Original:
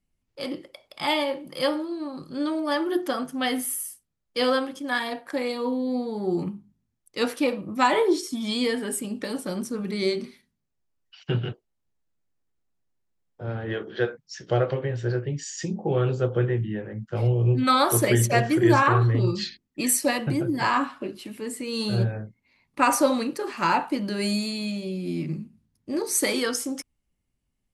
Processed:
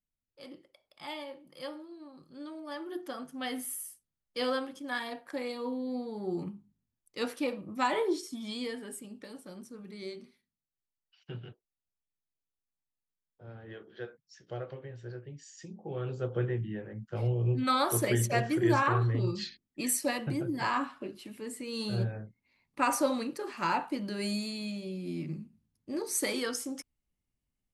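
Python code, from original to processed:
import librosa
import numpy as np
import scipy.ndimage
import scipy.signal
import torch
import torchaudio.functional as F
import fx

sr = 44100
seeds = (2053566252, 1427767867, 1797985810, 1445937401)

y = fx.gain(x, sr, db=fx.line((2.53, -16.5), (3.75, -8.5), (8.12, -8.5), (9.39, -16.5), (15.74, -16.5), (16.4, -7.5)))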